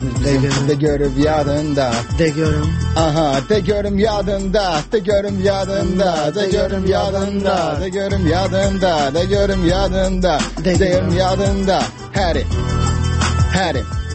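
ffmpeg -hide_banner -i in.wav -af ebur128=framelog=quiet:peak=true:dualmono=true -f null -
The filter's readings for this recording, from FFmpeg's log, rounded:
Integrated loudness:
  I:         -13.7 LUFS
  Threshold: -23.7 LUFS
Loudness range:
  LRA:         1.2 LU
  Threshold: -33.7 LUFS
  LRA low:   -14.2 LUFS
  LRA high:  -13.0 LUFS
True peak:
  Peak:       -2.6 dBFS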